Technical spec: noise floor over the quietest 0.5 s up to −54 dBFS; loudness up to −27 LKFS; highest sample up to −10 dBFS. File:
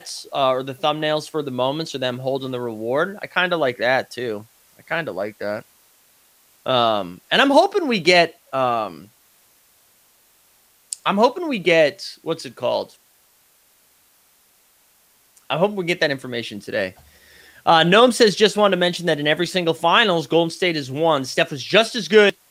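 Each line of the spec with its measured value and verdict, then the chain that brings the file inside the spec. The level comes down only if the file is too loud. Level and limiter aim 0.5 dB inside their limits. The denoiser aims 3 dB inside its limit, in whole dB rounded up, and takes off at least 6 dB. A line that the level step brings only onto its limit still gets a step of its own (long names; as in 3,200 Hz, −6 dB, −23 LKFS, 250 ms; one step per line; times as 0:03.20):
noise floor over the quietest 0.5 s −58 dBFS: in spec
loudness −19.5 LKFS: out of spec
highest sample −2.0 dBFS: out of spec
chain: level −8 dB
brickwall limiter −10.5 dBFS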